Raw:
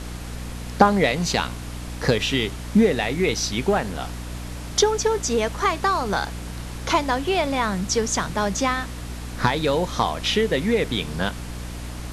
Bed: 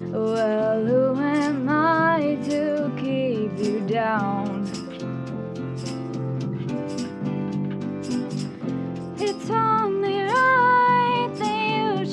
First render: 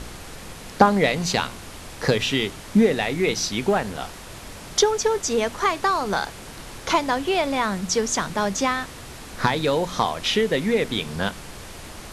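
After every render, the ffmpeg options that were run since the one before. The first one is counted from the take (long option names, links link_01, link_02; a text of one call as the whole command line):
ffmpeg -i in.wav -af "bandreject=frequency=60:width_type=h:width=4,bandreject=frequency=120:width_type=h:width=4,bandreject=frequency=180:width_type=h:width=4,bandreject=frequency=240:width_type=h:width=4,bandreject=frequency=300:width_type=h:width=4" out.wav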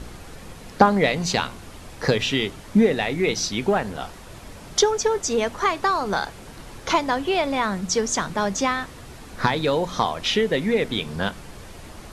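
ffmpeg -i in.wav -af "afftdn=noise_reduction=6:noise_floor=-40" out.wav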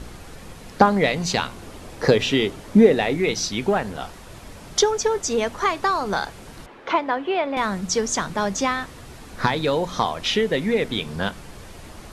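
ffmpeg -i in.wav -filter_complex "[0:a]asettb=1/sr,asplit=3[link_01][link_02][link_03];[link_01]atrim=end=1.574[link_04];[link_02]atrim=start=1.57:end=3.17,asetpts=PTS-STARTPTS,afade=type=in:duration=0.004:curve=qsin,afade=type=out:start_time=1.596:duration=0.004:curve=qsin,equalizer=frequency=410:width=0.74:gain=5.5[link_05];[link_03]atrim=start=3.166[link_06];[link_04][link_05]acrossfade=duration=0.004:curve1=hsin:curve2=qsin[link_07];[link_07][link_06]acrossfade=duration=0.004:curve1=qsin:curve2=hsin,asettb=1/sr,asplit=3[link_08][link_09][link_10];[link_08]atrim=end=6.664[link_11];[link_09]atrim=start=6.66:end=7.57,asetpts=PTS-STARTPTS,afade=type=in:duration=0.004:curve=qsin,afade=type=out:start_time=0.906:duration=0.004:curve=qsin,acrossover=split=220 3200:gain=0.0891 1 0.0708[link_12][link_13][link_14];[link_12][link_13][link_14]amix=inputs=3:normalize=0[link_15];[link_10]atrim=start=7.566[link_16];[link_11][link_15]acrossfade=duration=0.004:curve1=hsin:curve2=qsin[link_17];[link_17][link_16]acrossfade=duration=0.004:curve1=qsin:curve2=hsin" out.wav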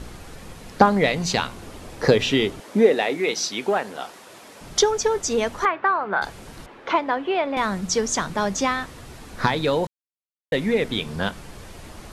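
ffmpeg -i in.wav -filter_complex "[0:a]asettb=1/sr,asplit=3[link_01][link_02][link_03];[link_01]atrim=end=2.604[link_04];[link_02]atrim=start=2.6:end=4.61,asetpts=PTS-STARTPTS,afade=type=in:duration=0.004:curve=qsin,afade=type=out:start_time=2.006:duration=0.004:curve=qsin,highpass=310[link_05];[link_03]atrim=start=4.606[link_06];[link_04][link_05]acrossfade=duration=0.004:curve1=hsin:curve2=qsin[link_07];[link_07][link_06]acrossfade=duration=0.004:curve1=qsin:curve2=hsin,asettb=1/sr,asplit=3[link_08][link_09][link_10];[link_08]atrim=end=5.654[link_11];[link_09]atrim=start=5.65:end=6.22,asetpts=PTS-STARTPTS,afade=type=in:duration=0.004:curve=qsin,afade=type=out:start_time=0.566:duration=0.004:curve=qsin,highpass=240,equalizer=frequency=260:width_type=q:width=4:gain=-8,equalizer=frequency=460:width_type=q:width=4:gain=-4,equalizer=frequency=1500:width_type=q:width=4:gain=5,lowpass=frequency=2500:width=0.5412,lowpass=frequency=2500:width=1.3066[link_12];[link_10]atrim=start=6.216[link_13];[link_11][link_12]acrossfade=duration=0.004:curve1=hsin:curve2=qsin[link_14];[link_14][link_13]acrossfade=duration=0.004:curve1=qsin:curve2=hsin,asplit=3[link_15][link_16][link_17];[link_15]atrim=end=9.87,asetpts=PTS-STARTPTS,afade=type=out:start_time=9.866:duration=0.004:curve=hsin[link_18];[link_16]atrim=start=9.87:end=10.52,asetpts=PTS-STARTPTS,volume=0[link_19];[link_17]atrim=start=10.52,asetpts=PTS-STARTPTS,afade=type=in:duration=0.004:curve=hsin[link_20];[link_18][link_19][link_20]concat=n=3:v=0:a=1" out.wav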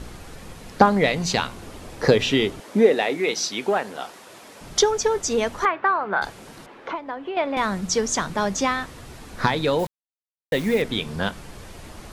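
ffmpeg -i in.wav -filter_complex "[0:a]asettb=1/sr,asplit=3[link_01][link_02][link_03];[link_01]atrim=end=6.304[link_04];[link_02]atrim=start=6.3:end=7.37,asetpts=PTS-STARTPTS,afade=type=in:duration=0.004:curve=qsin,afade=type=out:start_time=1.066:duration=0.004:curve=qsin,acrossover=split=130|1600[link_05][link_06][link_07];[link_05]acompressor=threshold=-57dB:ratio=4[link_08];[link_06]acompressor=threshold=-29dB:ratio=4[link_09];[link_07]acompressor=threshold=-45dB:ratio=4[link_10];[link_08][link_09][link_10]amix=inputs=3:normalize=0[link_11];[link_03]atrim=start=7.366[link_12];[link_04][link_11]acrossfade=duration=0.004:curve1=hsin:curve2=qsin[link_13];[link_13][link_12]acrossfade=duration=0.004:curve1=qsin:curve2=hsin,asettb=1/sr,asplit=3[link_14][link_15][link_16];[link_14]atrim=end=9.794[link_17];[link_15]atrim=start=9.79:end=10.82,asetpts=PTS-STARTPTS,afade=type=in:duration=0.004:curve=qsin,afade=type=out:start_time=1.026:duration=0.004:curve=qsin,acrusher=bits=7:dc=4:mix=0:aa=0.000001[link_18];[link_16]atrim=start=10.816[link_19];[link_17][link_18]acrossfade=duration=0.004:curve1=hsin:curve2=qsin[link_20];[link_20][link_19]acrossfade=duration=0.004:curve1=qsin:curve2=hsin" out.wav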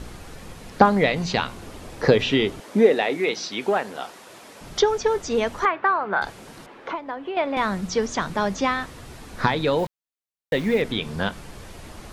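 ffmpeg -i in.wav -filter_complex "[0:a]acrossover=split=4800[link_01][link_02];[link_02]acompressor=threshold=-47dB:ratio=4:attack=1:release=60[link_03];[link_01][link_03]amix=inputs=2:normalize=0" out.wav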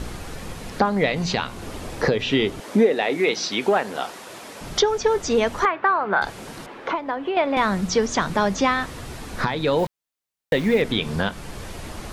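ffmpeg -i in.wav -filter_complex "[0:a]asplit=2[link_01][link_02];[link_02]acompressor=threshold=-27dB:ratio=6,volume=-0.5dB[link_03];[link_01][link_03]amix=inputs=2:normalize=0,alimiter=limit=-8dB:level=0:latency=1:release=391" out.wav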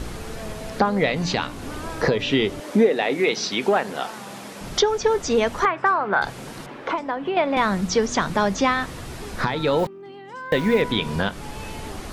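ffmpeg -i in.wav -i bed.wav -filter_complex "[1:a]volume=-17dB[link_01];[0:a][link_01]amix=inputs=2:normalize=0" out.wav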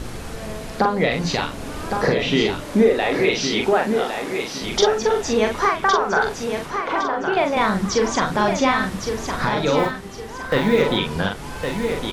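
ffmpeg -i in.wav -filter_complex "[0:a]asplit=2[link_01][link_02];[link_02]adelay=42,volume=-4dB[link_03];[link_01][link_03]amix=inputs=2:normalize=0,asplit=2[link_04][link_05];[link_05]aecho=0:1:1111|2222|3333|4444:0.473|0.147|0.0455|0.0141[link_06];[link_04][link_06]amix=inputs=2:normalize=0" out.wav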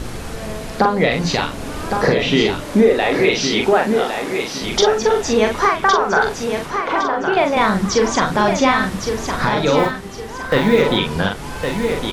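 ffmpeg -i in.wav -af "volume=3.5dB,alimiter=limit=-3dB:level=0:latency=1" out.wav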